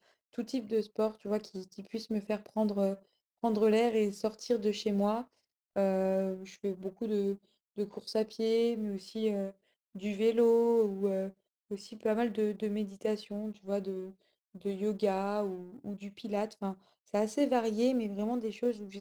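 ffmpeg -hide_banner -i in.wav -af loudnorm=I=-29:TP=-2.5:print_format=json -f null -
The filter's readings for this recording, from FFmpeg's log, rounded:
"input_i" : "-32.9",
"input_tp" : "-16.7",
"input_lra" : "3.9",
"input_thresh" : "-43.3",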